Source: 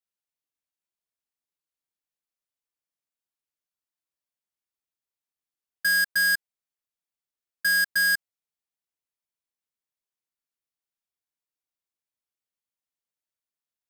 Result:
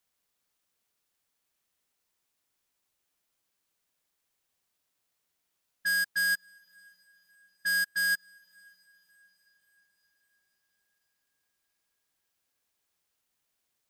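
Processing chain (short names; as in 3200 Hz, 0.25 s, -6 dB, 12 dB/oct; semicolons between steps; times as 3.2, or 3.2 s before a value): low-pass opened by the level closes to 360 Hz, open at -21.5 dBFS; diffused feedback echo 0.576 s, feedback 52%, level -13 dB; in parallel at -7 dB: requantised 8-bit, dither triangular; on the sum: upward expander 2.5:1, over -29 dBFS; gain -7.5 dB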